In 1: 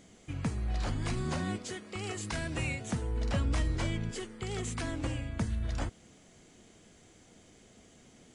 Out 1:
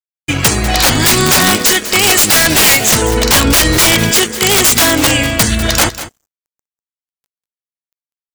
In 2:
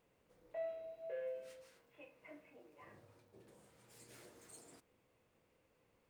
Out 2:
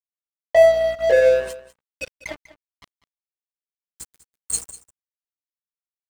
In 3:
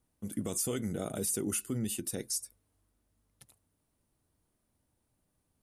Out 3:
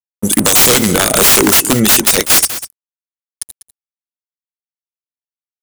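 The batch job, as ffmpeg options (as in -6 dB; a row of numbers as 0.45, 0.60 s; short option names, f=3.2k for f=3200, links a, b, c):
-af "aemphasis=mode=production:type=riaa,afftdn=nr=24:nf=-53,lowpass=6.1k,agate=range=-33dB:threshold=-56dB:ratio=3:detection=peak,aeval=exprs='(mod(35.5*val(0)+1,2)-1)/35.5':c=same,aeval=exprs='val(0)+0.000251*(sin(2*PI*60*n/s)+sin(2*PI*2*60*n/s)/2+sin(2*PI*3*60*n/s)/3+sin(2*PI*4*60*n/s)/4+sin(2*PI*5*60*n/s)/5)':c=same,aeval=exprs='sgn(val(0))*max(abs(val(0))-0.00112,0)':c=same,aecho=1:1:196:0.141,alimiter=level_in=34dB:limit=-1dB:release=50:level=0:latency=1,volume=-1dB"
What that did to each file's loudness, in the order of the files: +26.0, +32.5, +25.5 LU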